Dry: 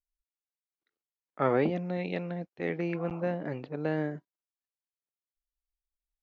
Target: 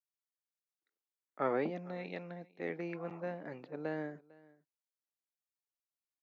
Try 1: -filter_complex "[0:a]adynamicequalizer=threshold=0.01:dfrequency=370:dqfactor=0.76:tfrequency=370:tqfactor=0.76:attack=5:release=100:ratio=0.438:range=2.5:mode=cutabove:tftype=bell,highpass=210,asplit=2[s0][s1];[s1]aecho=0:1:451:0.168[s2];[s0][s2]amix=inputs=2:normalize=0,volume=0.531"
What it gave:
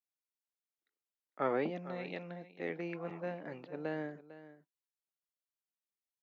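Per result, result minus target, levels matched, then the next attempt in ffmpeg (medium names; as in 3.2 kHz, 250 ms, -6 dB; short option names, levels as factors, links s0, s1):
echo-to-direct +7.5 dB; 4 kHz band +3.0 dB
-filter_complex "[0:a]adynamicequalizer=threshold=0.01:dfrequency=370:dqfactor=0.76:tfrequency=370:tqfactor=0.76:attack=5:release=100:ratio=0.438:range=2.5:mode=cutabove:tftype=bell,highpass=210,asplit=2[s0][s1];[s1]aecho=0:1:451:0.0708[s2];[s0][s2]amix=inputs=2:normalize=0,volume=0.531"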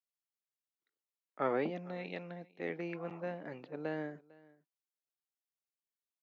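4 kHz band +3.0 dB
-filter_complex "[0:a]adynamicequalizer=threshold=0.01:dfrequency=370:dqfactor=0.76:tfrequency=370:tqfactor=0.76:attack=5:release=100:ratio=0.438:range=2.5:mode=cutabove:tftype=bell,highpass=210,equalizer=f=3000:t=o:w=0.45:g=-5,asplit=2[s0][s1];[s1]aecho=0:1:451:0.0708[s2];[s0][s2]amix=inputs=2:normalize=0,volume=0.531"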